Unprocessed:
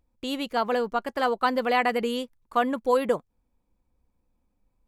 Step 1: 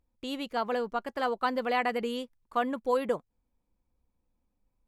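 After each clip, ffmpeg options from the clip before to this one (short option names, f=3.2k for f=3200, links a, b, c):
-af "highshelf=f=8k:g=-4,volume=-5dB"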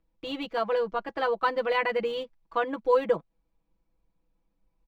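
-filter_complex "[0:a]acrossover=split=170|5300[a][b][c];[c]acrusher=samples=26:mix=1:aa=0.000001[d];[a][b][d]amix=inputs=3:normalize=0,aecho=1:1:6.1:0.92"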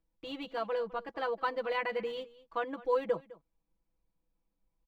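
-af "aecho=1:1:207:0.106,volume=-7dB"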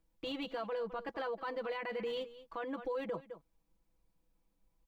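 -filter_complex "[0:a]asplit=2[a][b];[b]acompressor=threshold=-40dB:ratio=6,volume=2.5dB[c];[a][c]amix=inputs=2:normalize=0,alimiter=level_in=4dB:limit=-24dB:level=0:latency=1:release=13,volume=-4dB,volume=-3dB"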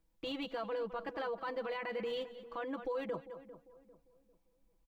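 -filter_complex "[0:a]asplit=2[a][b];[b]adelay=398,lowpass=f=1k:p=1,volume=-14dB,asplit=2[c][d];[d]adelay=398,lowpass=f=1k:p=1,volume=0.39,asplit=2[e][f];[f]adelay=398,lowpass=f=1k:p=1,volume=0.39,asplit=2[g][h];[h]adelay=398,lowpass=f=1k:p=1,volume=0.39[i];[a][c][e][g][i]amix=inputs=5:normalize=0"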